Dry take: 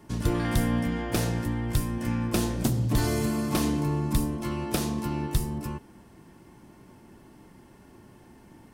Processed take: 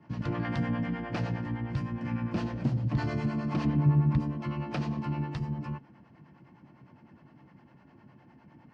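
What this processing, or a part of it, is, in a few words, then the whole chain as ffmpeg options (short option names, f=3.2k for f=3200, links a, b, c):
guitar amplifier with harmonic tremolo: -filter_complex "[0:a]acrossover=split=440[a][b];[a]aeval=exprs='val(0)*(1-0.7/2+0.7/2*cos(2*PI*9.8*n/s))':c=same[c];[b]aeval=exprs='val(0)*(1-0.7/2-0.7/2*cos(2*PI*9.8*n/s))':c=same[d];[c][d]amix=inputs=2:normalize=0,asoftclip=type=tanh:threshold=-17.5dB,highpass=100,equalizer=f=140:t=q:w=4:g=7,equalizer=f=400:t=q:w=4:g=-9,equalizer=f=3.6k:t=q:w=4:g=-10,lowpass=f=4k:w=0.5412,lowpass=f=4k:w=1.3066,asettb=1/sr,asplit=3[e][f][g];[e]atrim=end=3.654[h];[f]atrim=start=3.65:end=4.2,asetpts=PTS-STARTPTS,afade=t=in:d=0.004:c=qsin,afade=t=out:st=0.546:d=0.004:c=qsin,bass=f=250:g=5,treble=f=4k:g=-10[i];[g]atrim=start=4.196[j];[h][i]acrossfade=d=0.004:c1=hsin:c2=qsin[k];[k][j]acrossfade=d=0.004:c1=qsin:c2=hsin"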